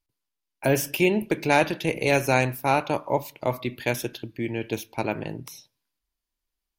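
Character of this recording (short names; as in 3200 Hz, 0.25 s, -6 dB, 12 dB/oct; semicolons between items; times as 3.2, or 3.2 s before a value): noise floor -85 dBFS; spectral tilt -5.0 dB/oct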